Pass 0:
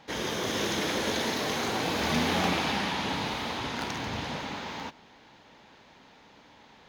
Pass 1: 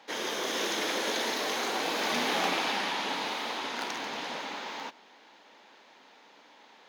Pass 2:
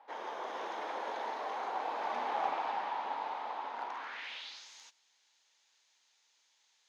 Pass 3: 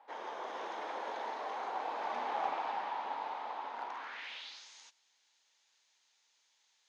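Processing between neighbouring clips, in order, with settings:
Bessel high-pass 360 Hz, order 4
band-pass sweep 850 Hz -> 7.1 kHz, 3.89–4.69 s
resampled via 22.05 kHz; trim -1.5 dB

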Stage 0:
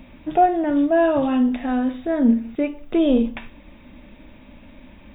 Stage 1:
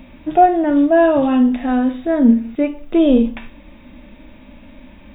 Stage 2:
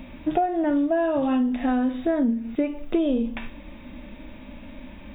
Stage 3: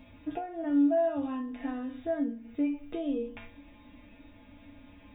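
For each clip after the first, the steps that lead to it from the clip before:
harmonic-percussive split harmonic +5 dB
compression 16:1, threshold -19 dBFS, peak gain reduction 14 dB
feedback comb 95 Hz, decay 0.26 s, harmonics odd, mix 90%

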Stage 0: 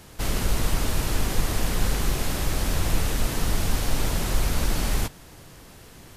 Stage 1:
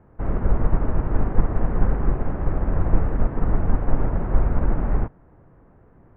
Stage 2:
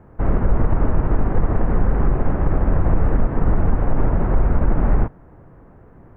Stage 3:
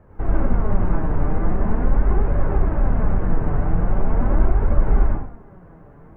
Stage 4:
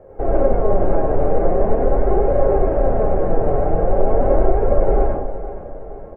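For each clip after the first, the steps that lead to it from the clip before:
Bessel low-pass 1 kHz, order 6; upward expansion 1.5:1, over -37 dBFS; trim +7 dB
loudness maximiser +13 dB; trim -6.5 dB
compression, threshold -15 dBFS, peak gain reduction 5.5 dB; plate-style reverb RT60 0.56 s, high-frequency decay 0.8×, pre-delay 80 ms, DRR -4 dB; flange 0.42 Hz, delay 1.6 ms, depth 5.5 ms, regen +50%
high-order bell 520 Hz +15.5 dB 1.3 oct; feedback comb 270 Hz, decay 0.15 s, harmonics all, mix 70%; feedback delay 469 ms, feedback 49%, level -13.5 dB; trim +6 dB

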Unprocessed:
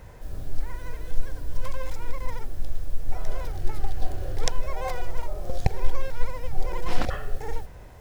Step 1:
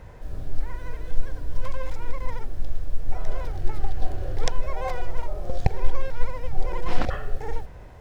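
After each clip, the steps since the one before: low-pass 3.6 kHz 6 dB/octave; trim +1.5 dB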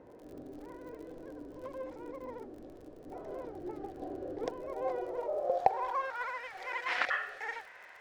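tone controls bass -15 dB, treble +6 dB; band-pass sweep 290 Hz -> 1.9 kHz, 4.82–6.50 s; crackle 51 per s -56 dBFS; trim +8.5 dB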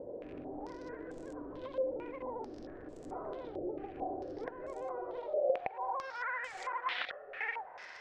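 compression 3:1, threshold -44 dBFS, peak gain reduction 18.5 dB; step-sequenced low-pass 4.5 Hz 560–7600 Hz; trim +2.5 dB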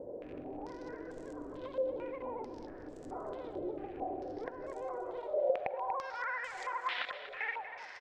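feedback delay 239 ms, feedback 34%, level -11.5 dB

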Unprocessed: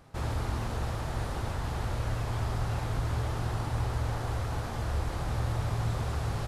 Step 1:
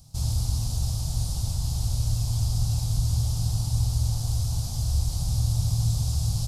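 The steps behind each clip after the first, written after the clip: FFT filter 140 Hz 0 dB, 400 Hz -23 dB, 740 Hz -14 dB, 1.8 kHz -28 dB, 4.9 kHz +7 dB; trim +7 dB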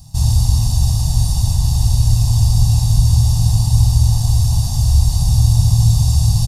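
comb 1.1 ms, depth 93%; trim +7 dB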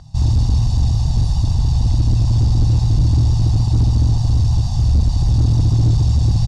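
vibrato 6.7 Hz 28 cents; hard clipper -9.5 dBFS, distortion -14 dB; distance through air 140 m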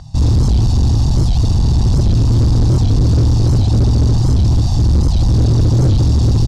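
hard clipper -15 dBFS, distortion -12 dB; warped record 78 rpm, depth 250 cents; trim +6 dB

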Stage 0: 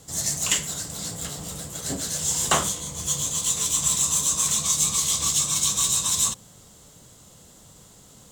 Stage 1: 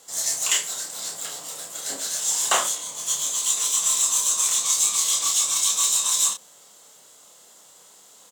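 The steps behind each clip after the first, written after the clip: high-pass 550 Hz 12 dB/octave; doubling 29 ms -4 dB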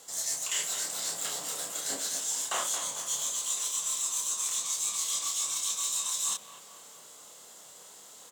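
reverse; compression, threshold -29 dBFS, peak gain reduction 13.5 dB; reverse; bucket-brigade echo 224 ms, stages 4096, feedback 56%, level -10 dB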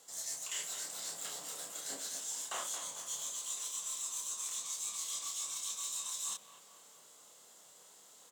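high-pass 99 Hz; trim -8.5 dB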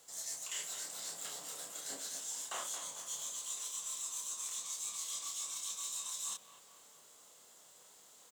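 bit crusher 11-bit; trim -1.5 dB

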